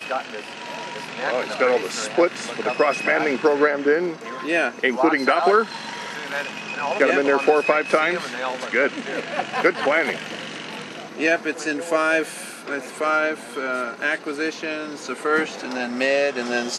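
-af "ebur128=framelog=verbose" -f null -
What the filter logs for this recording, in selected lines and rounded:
Integrated loudness:
  I:         -22.0 LUFS
  Threshold: -32.2 LUFS
Loudness range:
  LRA:         4.1 LU
  Threshold: -41.9 LUFS
  LRA low:   -24.2 LUFS
  LRA high:  -20.1 LUFS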